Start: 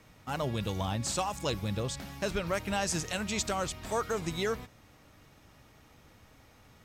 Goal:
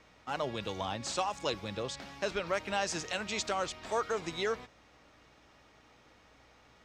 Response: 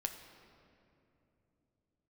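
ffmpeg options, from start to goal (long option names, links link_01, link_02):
-filter_complex "[0:a]acrossover=split=280 7000:gain=0.251 1 0.0891[link_01][link_02][link_03];[link_01][link_02][link_03]amix=inputs=3:normalize=0,aeval=exprs='val(0)+0.000316*(sin(2*PI*60*n/s)+sin(2*PI*2*60*n/s)/2+sin(2*PI*3*60*n/s)/3+sin(2*PI*4*60*n/s)/4+sin(2*PI*5*60*n/s)/5)':channel_layout=same"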